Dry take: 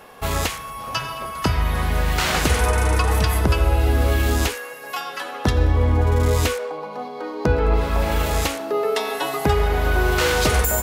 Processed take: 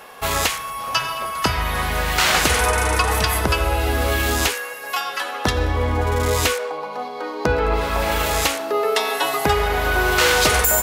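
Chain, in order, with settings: bass shelf 410 Hz -10.5 dB; trim +5.5 dB

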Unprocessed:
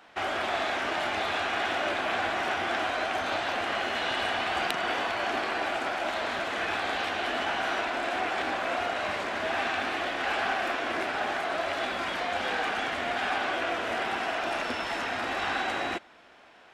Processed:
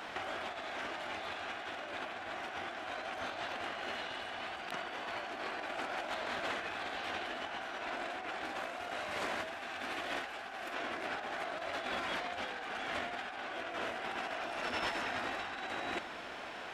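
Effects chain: 8.45–10.75 s: treble shelf 8.8 kHz +10.5 dB; compressor with a negative ratio -37 dBFS, ratio -0.5

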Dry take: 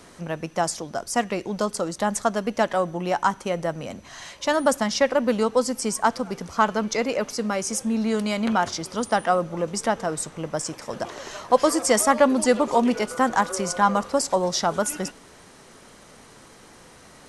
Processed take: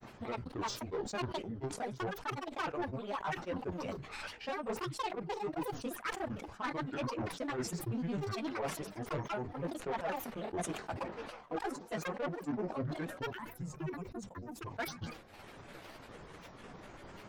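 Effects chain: high-order bell 7 kHz -10.5 dB; transient shaper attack +7 dB, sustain -9 dB; chorus voices 4, 0.79 Hz, delay 15 ms, depth 4.7 ms; reverse; compression 12:1, threshold -32 dBFS, peak gain reduction 23 dB; reverse; time-frequency box 13.37–14.66 s, 290–7200 Hz -13 dB; saturation -32 dBFS, distortion -12 dB; granulator, spray 26 ms, pitch spread up and down by 12 st; decay stretcher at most 98 dB/s; trim +2 dB

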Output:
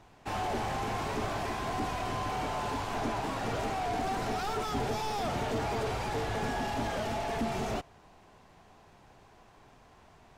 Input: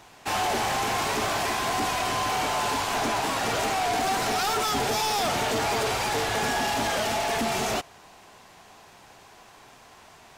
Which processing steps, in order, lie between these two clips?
tilt EQ -2.5 dB/octave; trim -8 dB

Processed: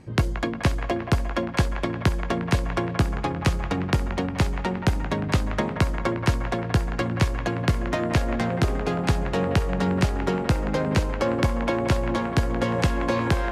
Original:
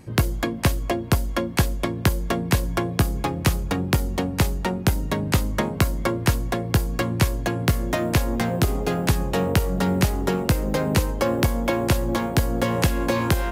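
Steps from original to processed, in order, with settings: low-pass 8 kHz 12 dB/octave; treble shelf 5.2 kHz -5.5 dB; feedback echo behind a band-pass 178 ms, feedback 66%, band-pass 1.2 kHz, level -7 dB; trim -1.5 dB

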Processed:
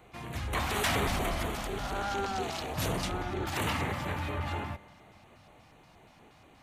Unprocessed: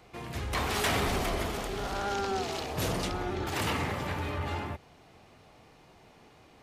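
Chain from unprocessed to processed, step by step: spring tank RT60 3.2 s, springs 39 ms, chirp 75 ms, DRR 19 dB; LFO notch square 4.2 Hz 420–5100 Hz

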